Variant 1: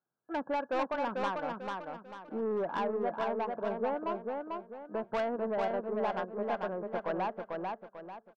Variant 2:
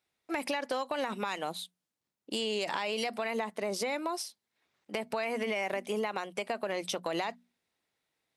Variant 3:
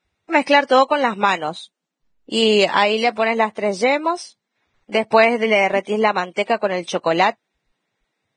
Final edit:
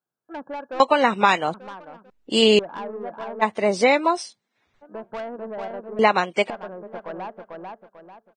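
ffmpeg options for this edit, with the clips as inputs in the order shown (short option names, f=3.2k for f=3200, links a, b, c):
-filter_complex "[2:a]asplit=4[a][b][c][d];[0:a]asplit=5[e][f][g][h][i];[e]atrim=end=0.802[j];[a]atrim=start=0.798:end=1.542[k];[f]atrim=start=1.538:end=2.102[l];[b]atrim=start=2.098:end=2.592[m];[g]atrim=start=2.588:end=3.43[n];[c]atrim=start=3.41:end=4.83[o];[h]atrim=start=4.81:end=5.992[p];[d]atrim=start=5.988:end=6.502[q];[i]atrim=start=6.498[r];[j][k]acrossfade=d=0.004:c1=hsin:c2=hsin[s];[s][l]acrossfade=d=0.004:c1=hsin:c2=hsin[t];[t][m]acrossfade=d=0.004:c1=hsin:c2=hsin[u];[u][n]acrossfade=d=0.004:c1=hsin:c2=hsin[v];[v][o]acrossfade=d=0.02:c1=tri:c2=tri[w];[w][p]acrossfade=d=0.02:c1=tri:c2=tri[x];[x][q]acrossfade=d=0.004:c1=hsin:c2=hsin[y];[y][r]acrossfade=d=0.004:c1=hsin:c2=hsin"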